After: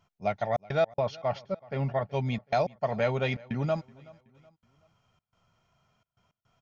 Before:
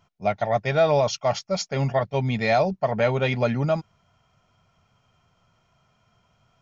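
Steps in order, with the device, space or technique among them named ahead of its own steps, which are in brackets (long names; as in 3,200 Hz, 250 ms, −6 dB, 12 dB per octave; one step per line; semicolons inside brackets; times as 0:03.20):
0:00.91–0:02.09: high-frequency loss of the air 260 metres
trance gate with a delay (gate pattern "xxxx.x.xxxx.x" 107 BPM −60 dB; repeating echo 375 ms, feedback 40%, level −23 dB)
level −5.5 dB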